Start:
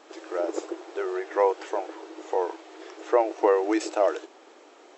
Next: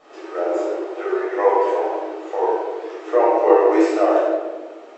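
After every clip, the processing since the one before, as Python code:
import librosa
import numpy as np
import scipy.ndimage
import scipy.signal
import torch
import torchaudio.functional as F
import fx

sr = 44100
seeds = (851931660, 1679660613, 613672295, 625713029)

y = fx.high_shelf(x, sr, hz=3200.0, db=-9.5)
y = fx.room_shoebox(y, sr, seeds[0], volume_m3=1000.0, walls='mixed', distance_m=6.3)
y = y * librosa.db_to_amplitude(-3.0)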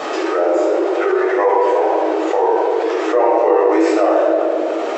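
y = scipy.signal.sosfilt(scipy.signal.butter(2, 190.0, 'highpass', fs=sr, output='sos'), x)
y = fx.env_flatten(y, sr, amount_pct=70)
y = y * librosa.db_to_amplitude(-2.0)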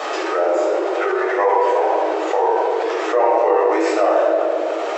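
y = scipy.signal.sosfilt(scipy.signal.butter(2, 460.0, 'highpass', fs=sr, output='sos'), x)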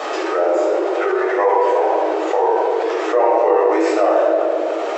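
y = fx.low_shelf(x, sr, hz=470.0, db=5.0)
y = y * librosa.db_to_amplitude(-1.0)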